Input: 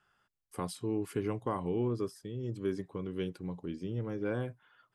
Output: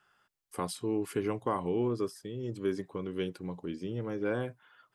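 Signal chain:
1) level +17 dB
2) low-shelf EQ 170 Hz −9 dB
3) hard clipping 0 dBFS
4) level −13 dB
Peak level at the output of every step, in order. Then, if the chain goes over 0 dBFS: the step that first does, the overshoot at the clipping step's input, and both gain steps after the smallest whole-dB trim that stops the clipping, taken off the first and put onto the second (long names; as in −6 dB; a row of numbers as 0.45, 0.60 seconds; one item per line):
−4.0, −5.0, −5.0, −18.0 dBFS
no step passes full scale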